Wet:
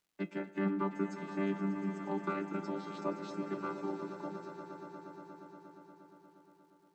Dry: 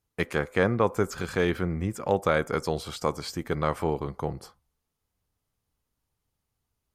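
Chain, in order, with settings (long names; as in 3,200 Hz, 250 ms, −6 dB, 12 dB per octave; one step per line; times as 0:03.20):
channel vocoder with a chord as carrier bare fifth, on G3
tuned comb filter 170 Hz, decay 0.15 s, harmonics all, mix 80%
surface crackle 550 per second −69 dBFS
on a send: echo that builds up and dies away 118 ms, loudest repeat 5, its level −13 dB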